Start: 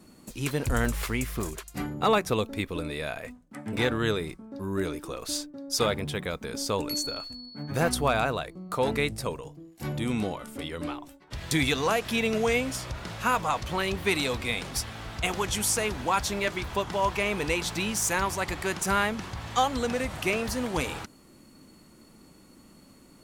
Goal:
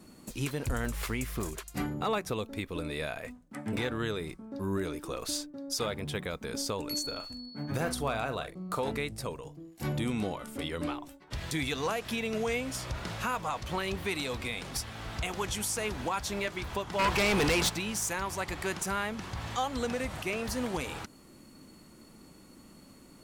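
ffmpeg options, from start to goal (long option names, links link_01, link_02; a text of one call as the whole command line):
ffmpeg -i in.wav -filter_complex "[0:a]alimiter=limit=-22dB:level=0:latency=1:release=394,asettb=1/sr,asplit=3[link_01][link_02][link_03];[link_01]atrim=end=7.064[link_04];[link_02]atrim=start=7.06:end=8.92,asetpts=PTS-STARTPTS,afade=type=in:duration=0.004:curve=qsin,afade=type=out:start_time=1.856:duration=0.004:curve=qsin,asplit=2[link_05][link_06];[link_06]adelay=44,volume=-10.5dB[link_07];[link_05][link_07]amix=inputs=2:normalize=0,atrim=end_sample=82026[link_08];[link_03]atrim=start=8.916[link_09];[link_04][link_08]acrossfade=duration=0.004:curve1=hsin:curve2=qsin[link_10];[link_10][link_09]acrossfade=duration=0.004:curve1=qsin:curve2=hsin,asplit=3[link_11][link_12][link_13];[link_11]afade=type=out:start_time=16.98:duration=0.02[link_14];[link_12]aeval=exprs='0.0794*sin(PI/2*2.24*val(0)/0.0794)':channel_layout=same,afade=type=in:start_time=16.98:duration=0.02,afade=type=out:start_time=17.68:duration=0.02[link_15];[link_13]afade=type=in:start_time=17.68:duration=0.02[link_16];[link_14][link_15][link_16]amix=inputs=3:normalize=0" out.wav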